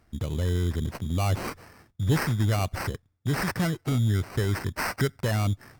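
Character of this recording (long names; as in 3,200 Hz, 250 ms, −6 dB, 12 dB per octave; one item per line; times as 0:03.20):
aliases and images of a low sample rate 3,500 Hz, jitter 0%
Opus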